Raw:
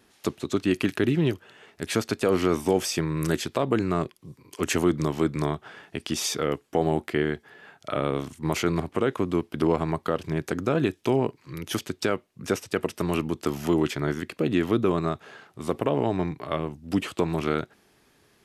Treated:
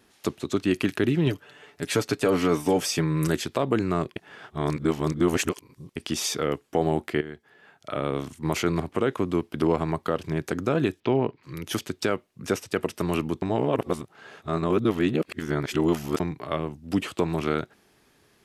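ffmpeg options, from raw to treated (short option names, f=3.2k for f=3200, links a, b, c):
-filter_complex "[0:a]asettb=1/sr,asplit=3[a][b][c];[a]atrim=end=1.264[d];[b]atrim=start=1.26:end=3.28,asetpts=PTS-STARTPTS,afade=t=in:d=0.004:c=qsin,afade=t=out:st=2.016:d=0.004:c=qsin,aecho=1:1:6.9:0.56,atrim=end_sample=89082[e];[c]atrim=start=3.276[f];[d][e]acrossfade=d=0.004:c1=hsin:c2=qsin[g];[g][f]acrossfade=d=0.004:c1=qsin:c2=hsin,asettb=1/sr,asplit=3[h][i][j];[h]atrim=end=11.004[k];[i]atrim=start=11:end=11.43,asetpts=PTS-STARTPTS,afade=t=in:d=0.004:c=qsin,afade=t=out:st=0.426:d=0.004:c=qsin,lowpass=f=4k:w=0.5412,lowpass=f=4k:w=1.3066[l];[j]atrim=start=11.426[m];[k][l]acrossfade=d=0.004:c1=hsin:c2=qsin[n];[n][m]acrossfade=d=0.004:c1=qsin:c2=hsin,asplit=6[o][p][q][r][s][t];[o]atrim=end=4.162[u];[p]atrim=start=4.158:end=5.962,asetpts=PTS-STARTPTS,areverse[v];[q]atrim=start=5.958:end=7.21,asetpts=PTS-STARTPTS,afade=t=out:st=1.248:d=0.004:c=hsin:silence=0.211349[w];[r]atrim=start=7.21:end=13.422,asetpts=PTS-STARTPTS,afade=t=in:d=1.05:silence=0.211349[x];[s]atrim=start=13.418:end=16.202,asetpts=PTS-STARTPTS,areverse[y];[t]atrim=start=16.198[z];[u][v]acrossfade=d=0.004:c1=hsin:c2=hsin[aa];[w][x]concat=n=2:v=0:a=1[ab];[aa][ab]acrossfade=d=0.004:c1=hsin:c2=hsin[ac];[ac][y]acrossfade=d=0.004:c1=hsin:c2=hsin[ad];[ad][z]acrossfade=d=0.004:c1=hsin:c2=hsin"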